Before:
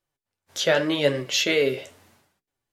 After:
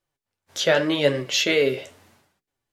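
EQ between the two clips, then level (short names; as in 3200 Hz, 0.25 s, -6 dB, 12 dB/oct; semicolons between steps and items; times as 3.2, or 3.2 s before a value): high shelf 8700 Hz -3.5 dB; +1.5 dB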